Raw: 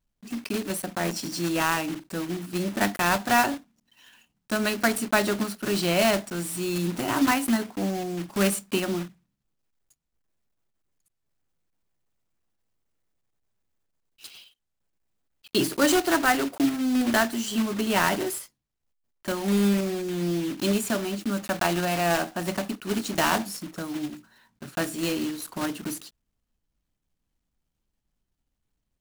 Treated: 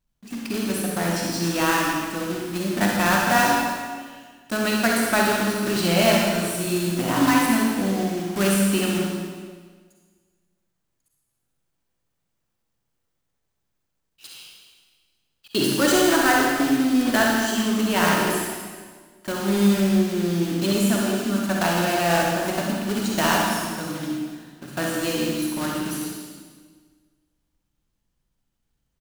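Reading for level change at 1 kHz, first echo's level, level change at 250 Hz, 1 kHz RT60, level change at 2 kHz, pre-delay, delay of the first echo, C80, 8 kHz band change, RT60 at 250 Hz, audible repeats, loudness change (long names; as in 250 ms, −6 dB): +4.0 dB, −7.0 dB, +4.5 dB, 1.5 s, +4.5 dB, 39 ms, 65 ms, 1.5 dB, +4.5 dB, 1.7 s, 1, +4.0 dB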